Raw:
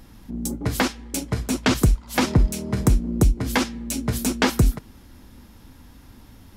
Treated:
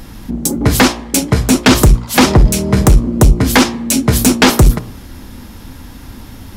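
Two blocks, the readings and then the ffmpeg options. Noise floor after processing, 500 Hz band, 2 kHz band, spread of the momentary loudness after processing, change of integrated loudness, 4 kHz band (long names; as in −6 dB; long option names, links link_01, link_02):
−34 dBFS, +12.0 dB, +11.5 dB, 6 LU, +11.5 dB, +13.0 dB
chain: -af "bandreject=frequency=58.8:width_type=h:width=4,bandreject=frequency=117.6:width_type=h:width=4,bandreject=frequency=176.4:width_type=h:width=4,bandreject=frequency=235.2:width_type=h:width=4,bandreject=frequency=294:width_type=h:width=4,bandreject=frequency=352.8:width_type=h:width=4,bandreject=frequency=411.6:width_type=h:width=4,bandreject=frequency=470.4:width_type=h:width=4,bandreject=frequency=529.2:width_type=h:width=4,bandreject=frequency=588:width_type=h:width=4,bandreject=frequency=646.8:width_type=h:width=4,bandreject=frequency=705.6:width_type=h:width=4,bandreject=frequency=764.4:width_type=h:width=4,bandreject=frequency=823.2:width_type=h:width=4,bandreject=frequency=882:width_type=h:width=4,bandreject=frequency=940.8:width_type=h:width=4,bandreject=frequency=999.6:width_type=h:width=4,bandreject=frequency=1058.4:width_type=h:width=4,bandreject=frequency=1117.2:width_type=h:width=4,bandreject=frequency=1176:width_type=h:width=4,bandreject=frequency=1234.8:width_type=h:width=4,aeval=exprs='0.447*sin(PI/2*2*val(0)/0.447)':channel_layout=same,volume=5dB"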